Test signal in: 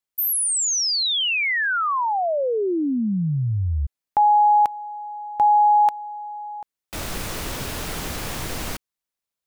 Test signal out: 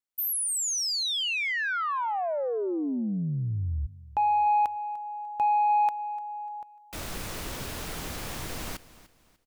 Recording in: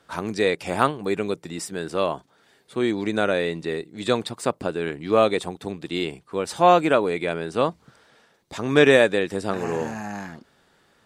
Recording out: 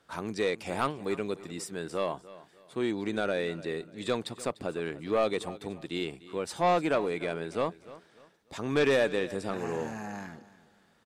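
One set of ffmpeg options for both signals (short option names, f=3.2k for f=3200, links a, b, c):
-filter_complex "[0:a]asoftclip=type=tanh:threshold=-11.5dB,asplit=2[a][b];[b]aecho=0:1:297|594|891:0.126|0.0403|0.0129[c];[a][c]amix=inputs=2:normalize=0,volume=-6.5dB"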